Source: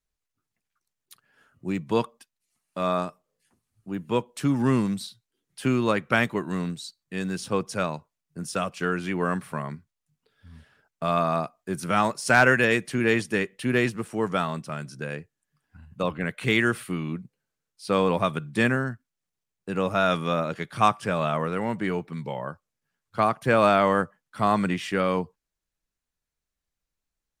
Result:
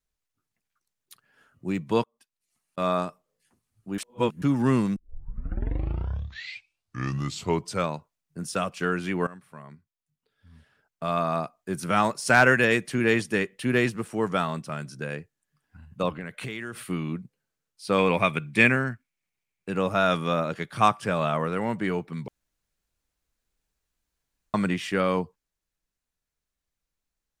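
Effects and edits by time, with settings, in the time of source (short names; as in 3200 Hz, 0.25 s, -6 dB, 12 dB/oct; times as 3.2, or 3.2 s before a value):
2.03–2.78 auto swell 0.524 s
3.98–4.42 reverse
4.96 tape start 3.00 s
9.27–11.88 fade in, from -19 dB
16.09–16.79 compressor 12:1, threshold -30 dBFS
17.98–19.7 bell 2300 Hz +14 dB 0.43 oct
22.28–24.54 room tone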